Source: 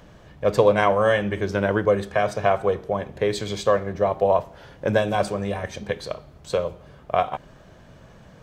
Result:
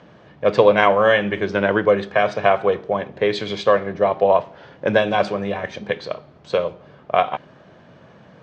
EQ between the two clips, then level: dynamic bell 2.9 kHz, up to +6 dB, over -38 dBFS, Q 0.71; band-pass 150–6400 Hz; distance through air 120 m; +3.5 dB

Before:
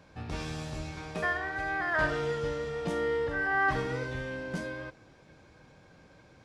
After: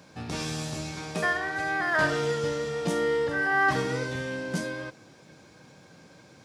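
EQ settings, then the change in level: high-pass 170 Hz 12 dB/octave; tone controls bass +6 dB, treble +9 dB; +3.5 dB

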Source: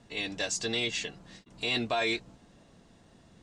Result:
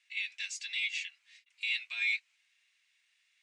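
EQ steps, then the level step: ladder high-pass 2.1 kHz, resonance 70%; +2.0 dB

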